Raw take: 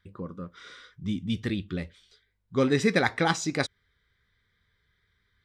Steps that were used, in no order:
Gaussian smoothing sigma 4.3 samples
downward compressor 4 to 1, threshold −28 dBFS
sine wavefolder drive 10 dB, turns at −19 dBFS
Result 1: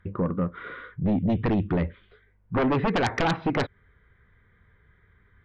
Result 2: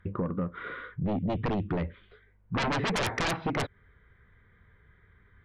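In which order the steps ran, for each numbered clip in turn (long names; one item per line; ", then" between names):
Gaussian smoothing, then downward compressor, then sine wavefolder
Gaussian smoothing, then sine wavefolder, then downward compressor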